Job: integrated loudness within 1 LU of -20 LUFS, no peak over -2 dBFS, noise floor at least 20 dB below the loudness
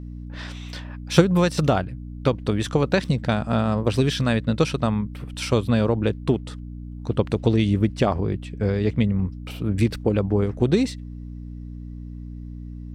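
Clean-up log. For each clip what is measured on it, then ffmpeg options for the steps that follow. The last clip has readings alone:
hum 60 Hz; highest harmonic 300 Hz; hum level -33 dBFS; loudness -22.5 LUFS; peak level -2.0 dBFS; loudness target -20.0 LUFS
-> -af "bandreject=f=60:t=h:w=4,bandreject=f=120:t=h:w=4,bandreject=f=180:t=h:w=4,bandreject=f=240:t=h:w=4,bandreject=f=300:t=h:w=4"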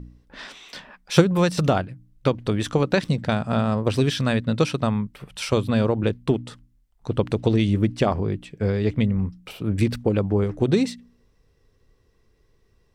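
hum not found; loudness -23.0 LUFS; peak level -3.0 dBFS; loudness target -20.0 LUFS
-> -af "volume=1.41,alimiter=limit=0.794:level=0:latency=1"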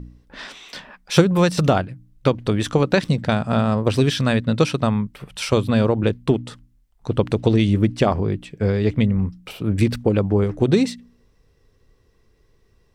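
loudness -20.0 LUFS; peak level -2.0 dBFS; noise floor -60 dBFS

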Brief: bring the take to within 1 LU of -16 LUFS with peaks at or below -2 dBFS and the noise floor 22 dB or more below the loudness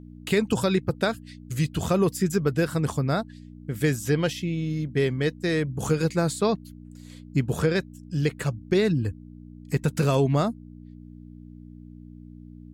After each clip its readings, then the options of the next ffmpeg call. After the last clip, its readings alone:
hum 60 Hz; highest harmonic 300 Hz; hum level -42 dBFS; loudness -25.5 LUFS; peak level -10.5 dBFS; loudness target -16.0 LUFS
-> -af "bandreject=f=60:t=h:w=4,bandreject=f=120:t=h:w=4,bandreject=f=180:t=h:w=4,bandreject=f=240:t=h:w=4,bandreject=f=300:t=h:w=4"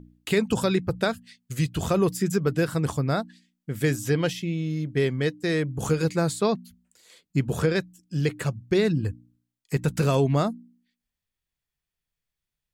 hum not found; loudness -26.0 LUFS; peak level -11.0 dBFS; loudness target -16.0 LUFS
-> -af "volume=3.16,alimiter=limit=0.794:level=0:latency=1"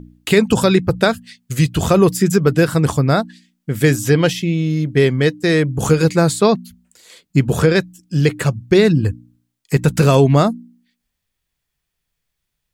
loudness -16.0 LUFS; peak level -2.0 dBFS; noise floor -77 dBFS

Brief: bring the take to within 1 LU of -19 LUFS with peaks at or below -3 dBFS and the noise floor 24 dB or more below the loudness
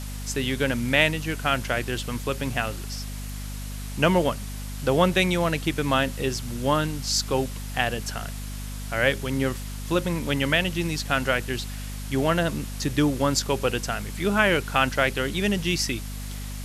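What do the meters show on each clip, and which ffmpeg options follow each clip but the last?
hum 50 Hz; highest harmonic 250 Hz; hum level -31 dBFS; noise floor -34 dBFS; noise floor target -49 dBFS; loudness -25.0 LUFS; peak level -5.0 dBFS; loudness target -19.0 LUFS
-> -af "bandreject=f=50:t=h:w=6,bandreject=f=100:t=h:w=6,bandreject=f=150:t=h:w=6,bandreject=f=200:t=h:w=6,bandreject=f=250:t=h:w=6"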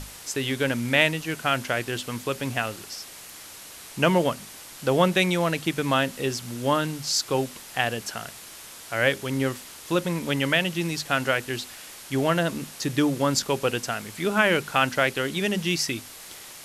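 hum not found; noise floor -43 dBFS; noise floor target -49 dBFS
-> -af "afftdn=nr=6:nf=-43"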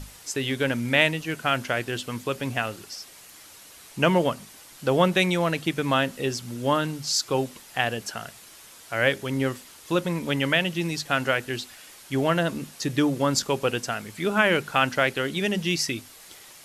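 noise floor -48 dBFS; noise floor target -49 dBFS
-> -af "afftdn=nr=6:nf=-48"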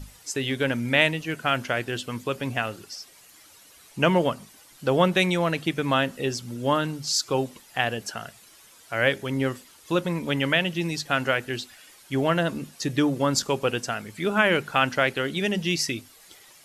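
noise floor -53 dBFS; loudness -25.0 LUFS; peak level -5.0 dBFS; loudness target -19.0 LUFS
-> -af "volume=2,alimiter=limit=0.708:level=0:latency=1"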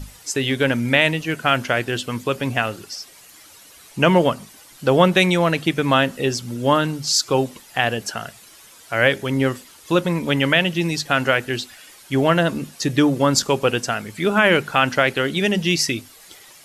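loudness -19.5 LUFS; peak level -3.0 dBFS; noise floor -47 dBFS

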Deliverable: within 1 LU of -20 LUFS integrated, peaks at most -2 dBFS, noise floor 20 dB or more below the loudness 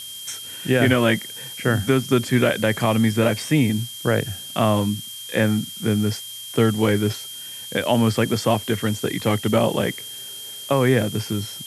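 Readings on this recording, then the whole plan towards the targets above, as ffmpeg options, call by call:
steady tone 3.2 kHz; tone level -35 dBFS; noise floor -36 dBFS; noise floor target -42 dBFS; loudness -21.5 LUFS; peak level -4.5 dBFS; loudness target -20.0 LUFS
-> -af "bandreject=f=3200:w=30"
-af "afftdn=nr=6:nf=-36"
-af "volume=1.19"

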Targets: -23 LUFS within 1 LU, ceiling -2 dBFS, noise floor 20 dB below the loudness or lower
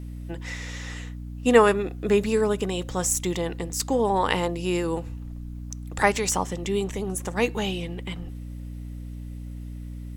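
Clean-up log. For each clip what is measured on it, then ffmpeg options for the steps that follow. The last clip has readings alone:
hum 60 Hz; highest harmonic 300 Hz; hum level -33 dBFS; loudness -25.0 LUFS; peak level -1.5 dBFS; loudness target -23.0 LUFS
-> -af "bandreject=f=60:t=h:w=6,bandreject=f=120:t=h:w=6,bandreject=f=180:t=h:w=6,bandreject=f=240:t=h:w=6,bandreject=f=300:t=h:w=6"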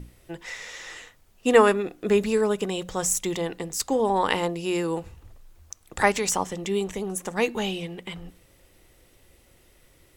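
hum not found; loudness -25.0 LUFS; peak level -2.5 dBFS; loudness target -23.0 LUFS
-> -af "volume=1.26,alimiter=limit=0.794:level=0:latency=1"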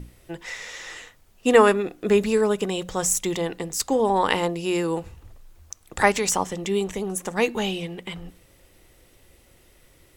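loudness -23.0 LUFS; peak level -2.0 dBFS; noise floor -57 dBFS

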